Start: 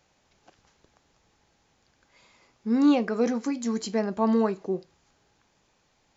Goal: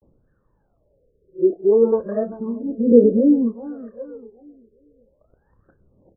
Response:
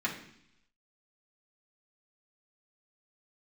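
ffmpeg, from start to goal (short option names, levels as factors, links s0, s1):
-filter_complex "[0:a]areverse,lowshelf=f=640:t=q:w=3:g=6,asplit=2[s0][s1];[s1]adelay=30,volume=0.282[s2];[s0][s2]amix=inputs=2:normalize=0,asplit=2[s3][s4];[s4]adelay=391,lowpass=f=3800:p=1,volume=0.237,asplit=2[s5][s6];[s6]adelay=391,lowpass=f=3800:p=1,volume=0.37,asplit=2[s7][s8];[s8]adelay=391,lowpass=f=3800:p=1,volume=0.37,asplit=2[s9][s10];[s10]adelay=391,lowpass=f=3800:p=1,volume=0.37[s11];[s5][s7][s9][s11]amix=inputs=4:normalize=0[s12];[s3][s12]amix=inputs=2:normalize=0,aphaser=in_gain=1:out_gain=1:delay=2.9:decay=0.75:speed=0.33:type=triangular,afftfilt=real='re*lt(b*sr/1024,620*pow(1900/620,0.5+0.5*sin(2*PI*0.58*pts/sr)))':imag='im*lt(b*sr/1024,620*pow(1900/620,0.5+0.5*sin(2*PI*0.58*pts/sr)))':win_size=1024:overlap=0.75,volume=0.631"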